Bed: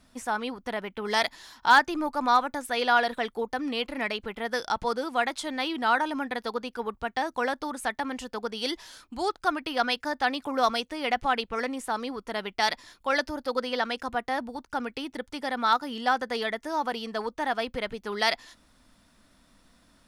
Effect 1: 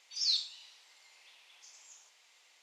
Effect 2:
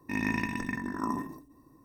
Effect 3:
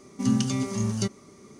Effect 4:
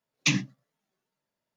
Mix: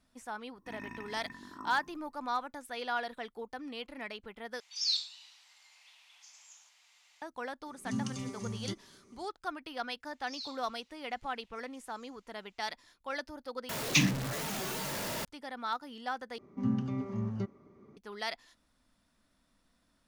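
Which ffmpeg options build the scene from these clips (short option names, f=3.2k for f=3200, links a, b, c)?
-filter_complex "[1:a]asplit=2[a][b];[3:a]asplit=2[c][d];[0:a]volume=-12dB[e];[2:a]equalizer=f=1.3k:w=1.9:g=8[f];[a]highpass=f=710:w=0.5412,highpass=f=710:w=1.3066[g];[4:a]aeval=exprs='val(0)+0.5*0.0473*sgn(val(0))':c=same[h];[d]lowpass=1.5k[i];[e]asplit=4[j][k][l][m];[j]atrim=end=4.604[n];[g]atrim=end=2.62,asetpts=PTS-STARTPTS,volume=-0.5dB[o];[k]atrim=start=7.216:end=13.694[p];[h]atrim=end=1.56,asetpts=PTS-STARTPTS,volume=-3dB[q];[l]atrim=start=15.246:end=16.384[r];[i]atrim=end=1.59,asetpts=PTS-STARTPTS,volume=-7.5dB[s];[m]atrim=start=17.966[t];[f]atrim=end=1.84,asetpts=PTS-STARTPTS,volume=-16.5dB,afade=t=in:d=0.004:c=hsin,afade=t=out:st=1.836:d=0.004:c=hsin,adelay=570[u];[c]atrim=end=1.59,asetpts=PTS-STARTPTS,volume=-12dB,afade=t=in:d=0.004:c=hsin,afade=t=out:st=1.586:d=0.004:c=hsin,adelay=7660[v];[b]atrim=end=2.62,asetpts=PTS-STARTPTS,volume=-13.5dB,afade=t=in:d=0.004:c=hsin,afade=t=out:st=2.616:d=0.004:c=hsin,adelay=10110[w];[n][o]acrossfade=d=0.004:c1=hsin:c2=hsin[x];[x][p]acrossfade=d=0.004:c1=hsin:c2=hsin[y];[y][q]acrossfade=d=0.004:c1=hsin:c2=hsin[z];[z][r]acrossfade=d=0.004:c1=hsin:c2=hsin[aa];[aa][s]acrossfade=d=0.004:c1=hsin:c2=hsin[ab];[ab][t]acrossfade=d=0.004:c1=hsin:c2=hsin[ac];[ac][u][v][w]amix=inputs=4:normalize=0"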